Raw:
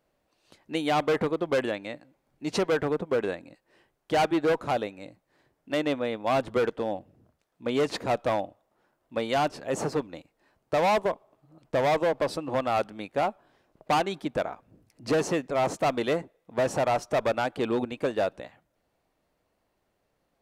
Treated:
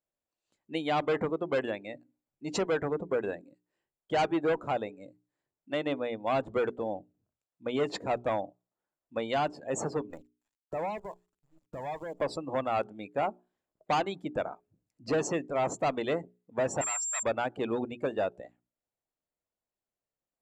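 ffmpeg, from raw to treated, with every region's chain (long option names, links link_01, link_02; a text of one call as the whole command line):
ffmpeg -i in.wav -filter_complex "[0:a]asettb=1/sr,asplit=3[link_01][link_02][link_03];[link_01]atrim=end=10.104[link_04];[link_02]atrim=start=10.1:end=12.21,asetpts=PTS-STARTPTS,afade=type=in:duration=0.004:curve=qsin,afade=type=out:start_time=2.106:duration=0.004:curve=qsin,acrusher=bits=7:dc=4:mix=0:aa=0.000001,acompressor=threshold=-37dB:ratio=2.5:attack=3.2:release=140:knee=1:detection=peak,aphaser=in_gain=1:out_gain=1:delay=1.2:decay=0.41:speed=1.4:type=sinusoidal[link_05];[link_03]atrim=start=12.206[link_06];[link_04][link_05]acrossfade=duration=0.004:curve1=hsin:curve2=qsin[link_07];[link_07][link_06]acrossfade=duration=0.004:curve1=qsin:curve2=hsin,asettb=1/sr,asplit=3[link_08][link_09][link_10];[link_08]atrim=end=16.814[link_11];[link_09]atrim=start=16.81:end=17.23,asetpts=PTS-STARTPTS,afade=type=in:duration=0.004:curve=qsin,afade=type=out:start_time=0.416:duration=0.004:curve=qsin,aeval=exprs='val(0)+0.01*sin(2*PI*7400*n/s)':channel_layout=same,highpass=frequency=1100:width=0.5412,highpass=frequency=1100:width=1.3066[link_12];[link_10]atrim=start=17.226[link_13];[link_11][link_12]acrossfade=duration=0.004:curve1=hsin:curve2=qsin[link_14];[link_14][link_13]acrossfade=duration=0.004:curve1=qsin:curve2=hsin,afftdn=noise_reduction=18:noise_floor=-40,equalizer=frequency=7300:width=6.3:gain=14,bandreject=frequency=60:width_type=h:width=6,bandreject=frequency=120:width_type=h:width=6,bandreject=frequency=180:width_type=h:width=6,bandreject=frequency=240:width_type=h:width=6,bandreject=frequency=300:width_type=h:width=6,bandreject=frequency=360:width_type=h:width=6,bandreject=frequency=420:width_type=h:width=6,volume=-3.5dB" out.wav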